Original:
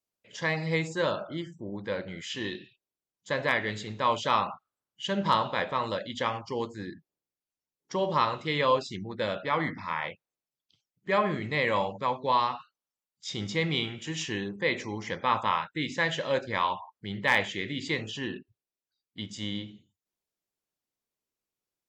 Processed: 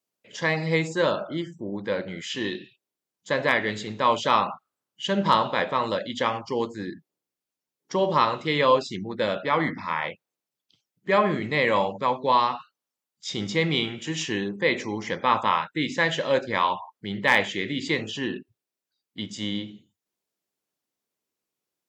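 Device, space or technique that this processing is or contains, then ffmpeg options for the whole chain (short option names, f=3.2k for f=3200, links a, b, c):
filter by subtraction: -filter_complex "[0:a]asplit=2[a][b];[b]lowpass=240,volume=-1[c];[a][c]amix=inputs=2:normalize=0,volume=4dB"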